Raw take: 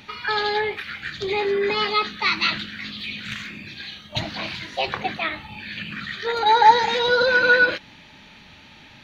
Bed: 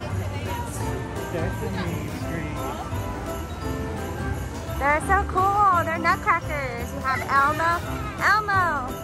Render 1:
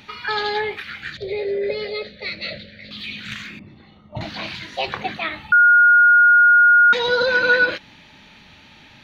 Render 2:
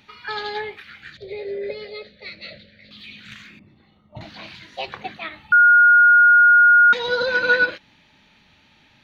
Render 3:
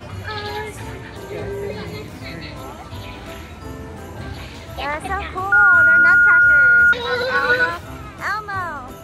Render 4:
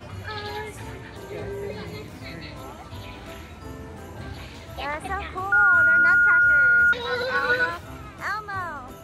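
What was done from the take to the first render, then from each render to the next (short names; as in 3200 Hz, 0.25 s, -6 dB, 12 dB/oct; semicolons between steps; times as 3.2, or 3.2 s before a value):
1.17–2.91 EQ curve 110 Hz 0 dB, 330 Hz -10 dB, 570 Hz +15 dB, 980 Hz -29 dB, 2100 Hz -5 dB, 3000 Hz -13 dB, 4300 Hz -5 dB, 6500 Hz -20 dB; 3.59–4.21 polynomial smoothing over 65 samples; 5.52–6.93 bleep 1430 Hz -8.5 dBFS
upward expander 1.5:1, over -29 dBFS
add bed -4 dB
gain -5.5 dB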